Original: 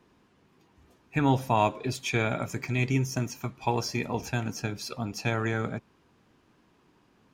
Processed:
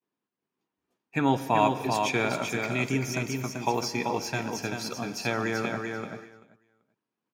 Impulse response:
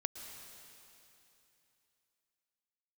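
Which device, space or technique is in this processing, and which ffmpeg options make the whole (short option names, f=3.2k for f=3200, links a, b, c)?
keyed gated reverb: -filter_complex "[0:a]highpass=180,agate=range=-33dB:threshold=-51dB:ratio=3:detection=peak,aecho=1:1:387|774|1161:0.562|0.0956|0.0163,asplit=3[a][b][c];[1:a]atrim=start_sample=2205[d];[b][d]afir=irnorm=-1:irlink=0[e];[c]apad=whole_len=374795[f];[e][f]sidechaingate=range=-33dB:threshold=-47dB:ratio=16:detection=peak,volume=-3.5dB[g];[a][g]amix=inputs=2:normalize=0,volume=-3dB"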